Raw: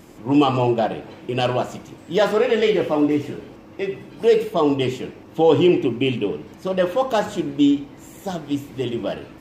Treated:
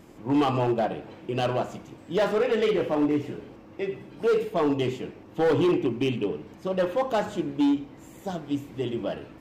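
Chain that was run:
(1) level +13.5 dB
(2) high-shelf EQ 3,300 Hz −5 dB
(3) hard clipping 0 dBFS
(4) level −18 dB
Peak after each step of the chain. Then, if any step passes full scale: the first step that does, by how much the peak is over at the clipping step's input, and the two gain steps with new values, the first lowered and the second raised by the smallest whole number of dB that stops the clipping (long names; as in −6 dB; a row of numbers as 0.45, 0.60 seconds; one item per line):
+9.5, +9.0, 0.0, −18.0 dBFS
step 1, 9.0 dB
step 1 +4.5 dB, step 4 −9 dB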